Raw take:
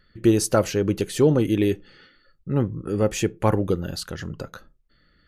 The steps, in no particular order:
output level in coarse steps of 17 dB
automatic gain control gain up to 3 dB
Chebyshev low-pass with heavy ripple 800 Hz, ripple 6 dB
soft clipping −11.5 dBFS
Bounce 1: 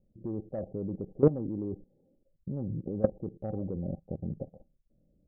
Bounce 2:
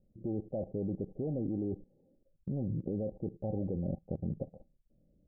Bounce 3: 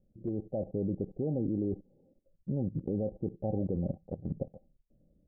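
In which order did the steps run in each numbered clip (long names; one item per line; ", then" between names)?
Chebyshev low-pass with heavy ripple, then soft clipping, then automatic gain control, then output level in coarse steps
automatic gain control, then soft clipping, then Chebyshev low-pass with heavy ripple, then output level in coarse steps
Chebyshev low-pass with heavy ripple, then output level in coarse steps, then soft clipping, then automatic gain control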